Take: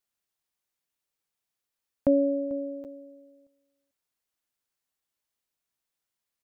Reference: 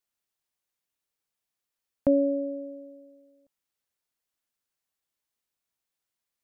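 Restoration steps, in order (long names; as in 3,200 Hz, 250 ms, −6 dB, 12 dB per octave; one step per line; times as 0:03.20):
repair the gap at 0:02.84, 8.4 ms
echo removal 443 ms −18.5 dB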